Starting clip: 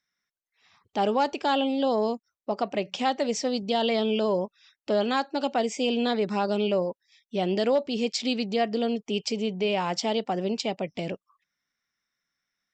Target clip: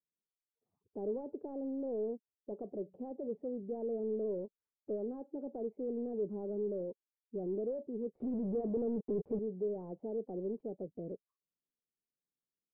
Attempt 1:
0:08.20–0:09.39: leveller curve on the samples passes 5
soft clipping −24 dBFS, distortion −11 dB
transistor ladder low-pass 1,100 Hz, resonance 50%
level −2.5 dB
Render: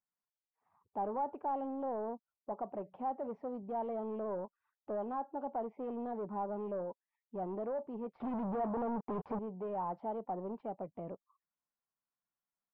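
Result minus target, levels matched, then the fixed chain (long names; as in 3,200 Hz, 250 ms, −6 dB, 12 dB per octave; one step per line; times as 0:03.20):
1,000 Hz band +17.5 dB
0:08.20–0:09.39: leveller curve on the samples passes 5
soft clipping −24 dBFS, distortion −11 dB
transistor ladder low-pass 510 Hz, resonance 50%
level −2.5 dB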